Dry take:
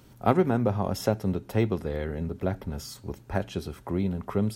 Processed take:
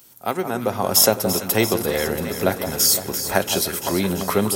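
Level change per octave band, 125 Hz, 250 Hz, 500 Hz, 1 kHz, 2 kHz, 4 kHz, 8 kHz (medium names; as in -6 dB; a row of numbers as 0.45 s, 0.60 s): -0.5 dB, +3.5 dB, +7.0 dB, +7.0 dB, +13.0 dB, +20.5 dB, +25.5 dB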